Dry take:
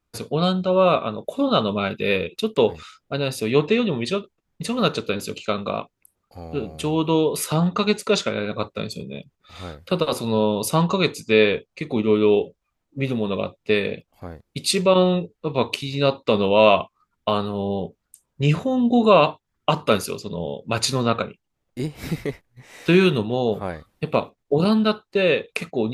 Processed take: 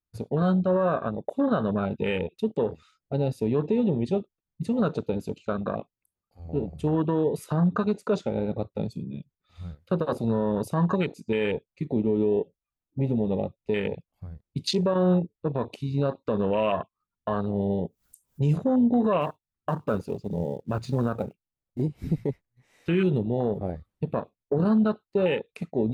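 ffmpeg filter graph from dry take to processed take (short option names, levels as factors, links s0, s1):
-filter_complex "[0:a]asettb=1/sr,asplit=3[s0][s1][s2];[s0]atrim=end=17.614[s3];[s1]atrim=start=17.61:end=18.58,asetpts=PTS-STARTPTS,afade=t=in:d=0.004:c=qsin,afade=t=out:st=0.966:d=0.004:c=qsin,aemphasis=mode=production:type=75fm,acompressor=mode=upward:threshold=0.0251:ratio=2.5:attack=3.2:release=140:knee=2.83:detection=peak,asoftclip=type=hard:threshold=0.316[s4];[s2]atrim=start=18.576[s5];[s3][s4]acrossfade=d=0.004:c1=hsin:c2=qsin[s6];[s6][s5]acrossfade=d=0.004:c1=qsin:c2=hsin,asettb=1/sr,asplit=3[s7][s8][s9];[s7]atrim=end=19.214[s10];[s8]atrim=start=19.21:end=21.82,asetpts=PTS-STARTPTS,afade=t=in:d=0.004:c=qsin,afade=t=out:st=2.606:d=0.004:c=qsin,lowpass=f=3100:p=1,acrusher=bits=4:mode=log:mix=0:aa=0.000001[s11];[s9]atrim=start=21.816[s12];[s10][s11]acrossfade=d=0.004:c1=hsin:c2=qsin[s13];[s13][s12]acrossfade=d=0.004:c1=qsin:c2=hsin,afwtdn=0.0631,bass=f=250:g=4,treble=f=4000:g=0,alimiter=limit=0.224:level=0:latency=1:release=104,volume=0.794"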